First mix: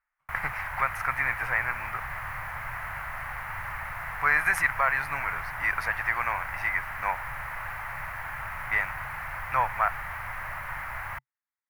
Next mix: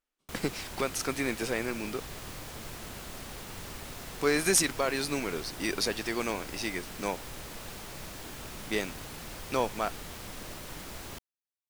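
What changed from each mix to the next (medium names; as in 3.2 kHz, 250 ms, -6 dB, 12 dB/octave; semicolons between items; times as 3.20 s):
background -4.0 dB; master: remove FFT filter 130 Hz 0 dB, 210 Hz -19 dB, 400 Hz -21 dB, 610 Hz -3 dB, 880 Hz +8 dB, 2 kHz +12 dB, 3.5 kHz -17 dB, 7.9 kHz -20 dB, 11 kHz -8 dB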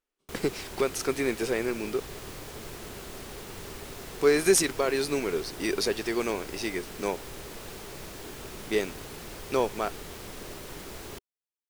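master: add peaking EQ 400 Hz +8.5 dB 0.48 oct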